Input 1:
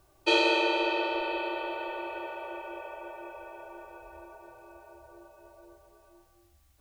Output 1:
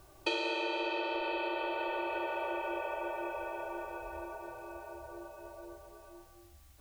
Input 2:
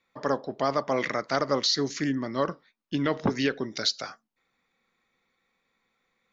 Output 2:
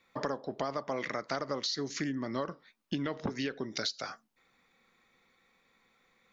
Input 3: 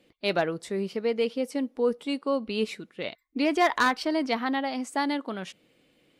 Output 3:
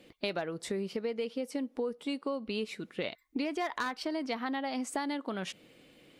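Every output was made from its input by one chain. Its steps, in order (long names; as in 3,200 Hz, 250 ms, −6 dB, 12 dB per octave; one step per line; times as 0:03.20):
downward compressor 8 to 1, threshold −37 dBFS
level +5.5 dB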